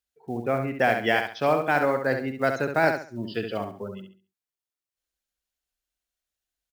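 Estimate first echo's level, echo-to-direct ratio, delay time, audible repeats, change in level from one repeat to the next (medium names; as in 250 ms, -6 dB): -6.5 dB, -6.0 dB, 68 ms, 3, -10.5 dB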